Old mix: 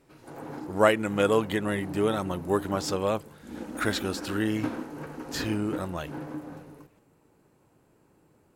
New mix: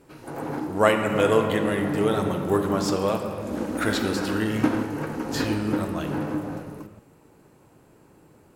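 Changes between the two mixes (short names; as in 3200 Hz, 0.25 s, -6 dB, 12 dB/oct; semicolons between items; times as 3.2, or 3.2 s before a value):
background +8.5 dB; reverb: on, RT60 3.0 s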